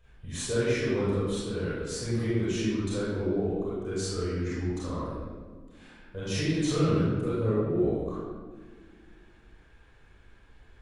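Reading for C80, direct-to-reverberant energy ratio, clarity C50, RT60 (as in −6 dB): −0.5 dB, −10.5 dB, −4.5 dB, 1.6 s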